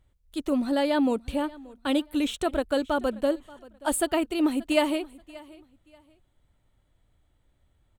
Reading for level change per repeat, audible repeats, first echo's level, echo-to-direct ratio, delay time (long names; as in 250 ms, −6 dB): −11.5 dB, 2, −21.5 dB, −21.0 dB, 581 ms